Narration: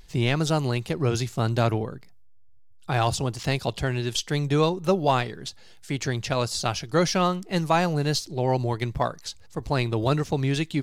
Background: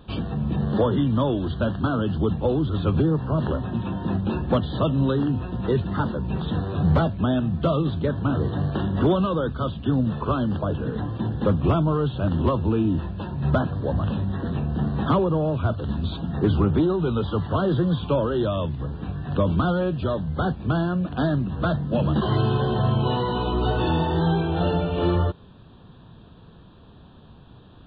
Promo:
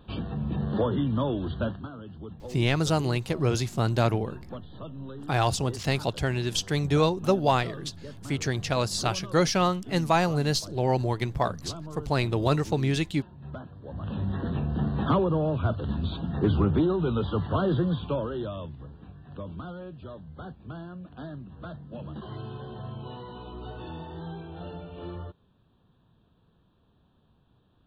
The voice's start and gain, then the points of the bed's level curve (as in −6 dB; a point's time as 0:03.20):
2.40 s, −1.0 dB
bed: 0:01.66 −5 dB
0:01.91 −18.5 dB
0:13.81 −18.5 dB
0:14.25 −3 dB
0:17.75 −3 dB
0:19.18 −17 dB